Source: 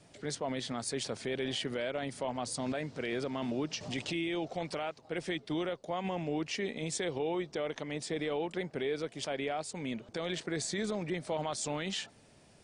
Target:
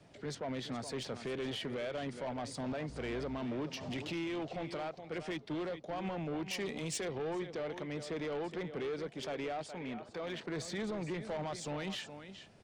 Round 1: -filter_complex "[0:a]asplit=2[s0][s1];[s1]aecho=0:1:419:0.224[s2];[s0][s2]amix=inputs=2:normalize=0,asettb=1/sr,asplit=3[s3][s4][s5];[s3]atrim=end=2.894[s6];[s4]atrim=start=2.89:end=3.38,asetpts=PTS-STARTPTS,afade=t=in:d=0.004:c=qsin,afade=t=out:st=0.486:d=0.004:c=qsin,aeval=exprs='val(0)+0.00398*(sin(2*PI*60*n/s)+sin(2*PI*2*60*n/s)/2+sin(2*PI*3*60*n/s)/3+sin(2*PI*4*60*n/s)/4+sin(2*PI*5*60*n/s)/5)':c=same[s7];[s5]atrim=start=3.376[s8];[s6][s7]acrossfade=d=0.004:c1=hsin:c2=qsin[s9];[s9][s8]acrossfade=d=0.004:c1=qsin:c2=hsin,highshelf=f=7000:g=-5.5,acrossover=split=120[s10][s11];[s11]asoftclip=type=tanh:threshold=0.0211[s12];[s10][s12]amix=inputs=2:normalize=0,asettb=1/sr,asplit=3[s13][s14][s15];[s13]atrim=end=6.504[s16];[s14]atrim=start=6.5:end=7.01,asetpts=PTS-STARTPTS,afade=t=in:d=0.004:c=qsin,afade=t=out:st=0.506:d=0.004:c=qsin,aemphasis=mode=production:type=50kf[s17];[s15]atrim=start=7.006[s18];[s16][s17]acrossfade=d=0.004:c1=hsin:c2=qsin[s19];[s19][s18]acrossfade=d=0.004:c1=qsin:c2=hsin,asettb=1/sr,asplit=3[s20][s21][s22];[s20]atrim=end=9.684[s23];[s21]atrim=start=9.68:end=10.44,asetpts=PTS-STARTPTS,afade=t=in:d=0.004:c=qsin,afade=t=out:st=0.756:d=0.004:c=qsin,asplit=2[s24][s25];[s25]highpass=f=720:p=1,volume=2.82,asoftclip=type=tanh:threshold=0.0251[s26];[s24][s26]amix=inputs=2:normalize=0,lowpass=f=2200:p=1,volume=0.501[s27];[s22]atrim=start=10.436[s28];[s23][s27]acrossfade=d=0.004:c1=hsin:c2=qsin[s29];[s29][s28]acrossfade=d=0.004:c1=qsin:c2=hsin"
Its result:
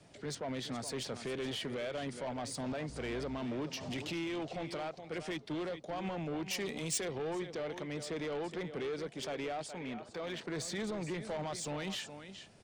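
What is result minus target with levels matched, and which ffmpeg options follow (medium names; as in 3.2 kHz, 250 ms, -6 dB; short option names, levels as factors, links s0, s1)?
8 kHz band +4.5 dB
-filter_complex "[0:a]asplit=2[s0][s1];[s1]aecho=0:1:419:0.224[s2];[s0][s2]amix=inputs=2:normalize=0,asettb=1/sr,asplit=3[s3][s4][s5];[s3]atrim=end=2.894[s6];[s4]atrim=start=2.89:end=3.38,asetpts=PTS-STARTPTS,afade=t=in:d=0.004:c=qsin,afade=t=out:st=0.486:d=0.004:c=qsin,aeval=exprs='val(0)+0.00398*(sin(2*PI*60*n/s)+sin(2*PI*2*60*n/s)/2+sin(2*PI*3*60*n/s)/3+sin(2*PI*4*60*n/s)/4+sin(2*PI*5*60*n/s)/5)':c=same[s7];[s5]atrim=start=3.376[s8];[s6][s7]acrossfade=d=0.004:c1=hsin:c2=qsin[s9];[s9][s8]acrossfade=d=0.004:c1=qsin:c2=hsin,highshelf=f=7000:g=-17.5,acrossover=split=120[s10][s11];[s11]asoftclip=type=tanh:threshold=0.0211[s12];[s10][s12]amix=inputs=2:normalize=0,asettb=1/sr,asplit=3[s13][s14][s15];[s13]atrim=end=6.504[s16];[s14]atrim=start=6.5:end=7.01,asetpts=PTS-STARTPTS,afade=t=in:d=0.004:c=qsin,afade=t=out:st=0.506:d=0.004:c=qsin,aemphasis=mode=production:type=50kf[s17];[s15]atrim=start=7.006[s18];[s16][s17]acrossfade=d=0.004:c1=hsin:c2=qsin[s19];[s19][s18]acrossfade=d=0.004:c1=qsin:c2=hsin,asettb=1/sr,asplit=3[s20][s21][s22];[s20]atrim=end=9.684[s23];[s21]atrim=start=9.68:end=10.44,asetpts=PTS-STARTPTS,afade=t=in:d=0.004:c=qsin,afade=t=out:st=0.756:d=0.004:c=qsin,asplit=2[s24][s25];[s25]highpass=f=720:p=1,volume=2.82,asoftclip=type=tanh:threshold=0.0251[s26];[s24][s26]amix=inputs=2:normalize=0,lowpass=f=2200:p=1,volume=0.501[s27];[s22]atrim=start=10.436[s28];[s23][s27]acrossfade=d=0.004:c1=hsin:c2=qsin[s29];[s29][s28]acrossfade=d=0.004:c1=qsin:c2=hsin"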